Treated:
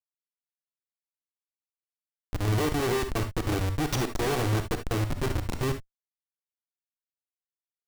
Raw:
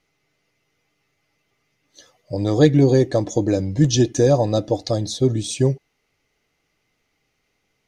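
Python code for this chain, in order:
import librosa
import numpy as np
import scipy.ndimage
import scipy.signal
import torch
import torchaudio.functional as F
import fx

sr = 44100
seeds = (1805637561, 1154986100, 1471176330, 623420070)

y = fx.lower_of_two(x, sr, delay_ms=2.6)
y = fx.schmitt(y, sr, flips_db=-20.5)
y = fx.rev_gated(y, sr, seeds[0], gate_ms=90, shape='rising', drr_db=7.5)
y = y * librosa.db_to_amplitude(-4.0)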